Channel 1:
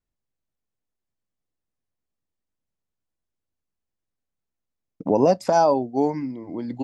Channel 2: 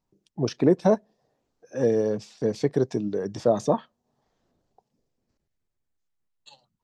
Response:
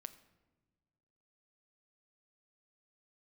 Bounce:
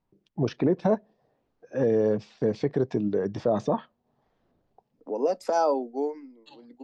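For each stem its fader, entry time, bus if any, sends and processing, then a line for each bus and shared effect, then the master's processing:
−6.5 dB, 0.00 s, no send, hollow resonant body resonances 460/1,300 Hz, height 9 dB; downward expander −31 dBFS; Butterworth high-pass 220 Hz 48 dB per octave; automatic ducking −16 dB, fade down 0.60 s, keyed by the second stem
+2.0 dB, 0.00 s, no send, low-pass filter 3,100 Hz 12 dB per octave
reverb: not used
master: brickwall limiter −14 dBFS, peak gain reduction 8.5 dB

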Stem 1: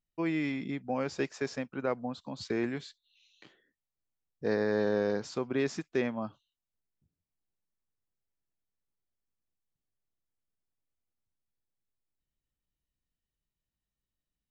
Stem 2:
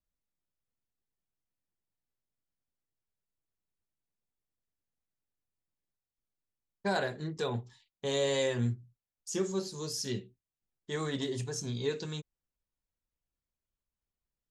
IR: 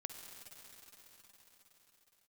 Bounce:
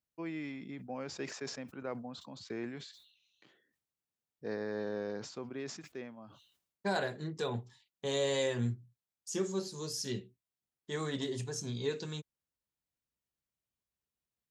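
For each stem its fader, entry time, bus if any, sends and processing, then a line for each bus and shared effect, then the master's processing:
−9.0 dB, 0.00 s, no send, level that may fall only so fast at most 73 dB per second; automatic ducking −12 dB, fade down 1.60 s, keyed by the second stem
−2.0 dB, 0.00 s, no send, no processing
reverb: not used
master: high-pass filter 81 Hz

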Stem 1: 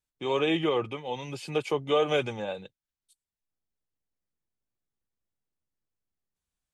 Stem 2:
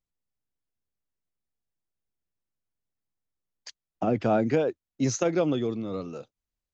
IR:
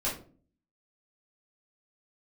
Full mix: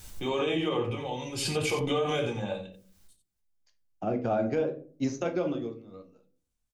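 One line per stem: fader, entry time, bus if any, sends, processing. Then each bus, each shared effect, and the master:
−8.0 dB, 0.00 s, send −4.5 dB, echo send −7 dB, bass and treble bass +5 dB, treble +5 dB; background raised ahead of every attack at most 35 dB per second
−2.0 dB, 0.00 s, send −9.5 dB, no echo send, expander for the loud parts 2.5 to 1, over −38 dBFS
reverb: on, RT60 0.45 s, pre-delay 3 ms
echo: single-tap delay 89 ms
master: brickwall limiter −19 dBFS, peak gain reduction 7.5 dB

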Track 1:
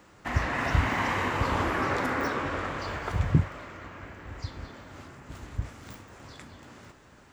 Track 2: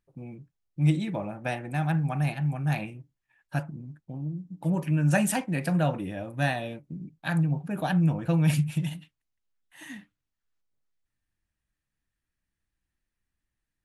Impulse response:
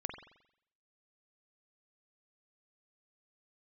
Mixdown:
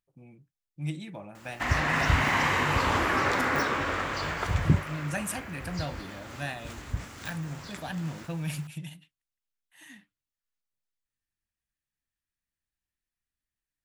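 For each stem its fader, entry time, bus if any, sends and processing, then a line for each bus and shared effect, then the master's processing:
+3.0 dB, 1.35 s, no send, bit reduction 11 bits
−7.5 dB, 0.00 s, no send, no processing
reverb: not used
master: tilt shelving filter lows −3.5 dB, about 1,300 Hz

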